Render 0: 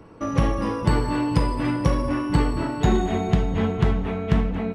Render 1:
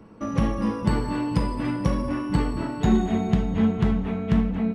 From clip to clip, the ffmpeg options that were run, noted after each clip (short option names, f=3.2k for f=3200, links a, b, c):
-af "equalizer=f=210:w=5.2:g=12.5,volume=-4dB"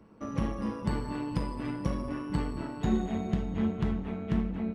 -af "tremolo=f=140:d=0.462,volume=-6dB"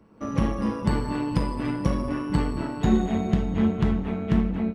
-af "dynaudnorm=f=130:g=3:m=7dB"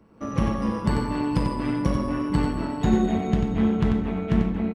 -af "aecho=1:1:92:0.501"